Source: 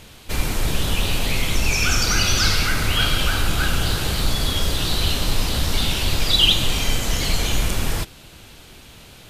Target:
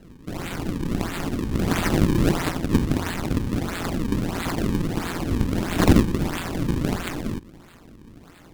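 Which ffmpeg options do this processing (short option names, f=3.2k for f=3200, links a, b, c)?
-af "bass=f=250:g=-12,treble=f=4k:g=-15,tremolo=f=160:d=0.788,aeval=exprs='0.0794*(abs(mod(val(0)/0.0794+3,4)-2)-1)':c=same,aexciter=amount=14.3:drive=6.7:freq=3.7k,acrusher=samples=40:mix=1:aa=0.000001:lfo=1:lforange=64:lforate=1.4,volume=-1.5dB,asoftclip=hard,volume=1.5dB,lowshelf=f=350:t=q:w=1.5:g=6.5,asetrate=48000,aresample=44100,volume=-10.5dB"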